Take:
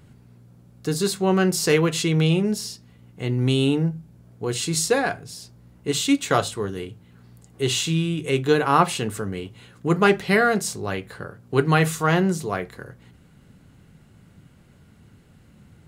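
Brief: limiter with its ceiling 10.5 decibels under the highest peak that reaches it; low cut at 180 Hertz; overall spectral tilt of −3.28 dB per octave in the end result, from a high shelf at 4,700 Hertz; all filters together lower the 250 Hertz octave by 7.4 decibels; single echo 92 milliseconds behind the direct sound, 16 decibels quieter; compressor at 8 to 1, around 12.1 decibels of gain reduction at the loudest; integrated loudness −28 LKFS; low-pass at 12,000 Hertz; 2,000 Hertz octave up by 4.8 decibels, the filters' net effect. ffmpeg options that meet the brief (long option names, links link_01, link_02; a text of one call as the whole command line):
ffmpeg -i in.wav -af "highpass=180,lowpass=12000,equalizer=frequency=250:width_type=o:gain=-9,equalizer=frequency=2000:width_type=o:gain=7,highshelf=frequency=4700:gain=-3.5,acompressor=threshold=-24dB:ratio=8,alimiter=limit=-20dB:level=0:latency=1,aecho=1:1:92:0.158,volume=4dB" out.wav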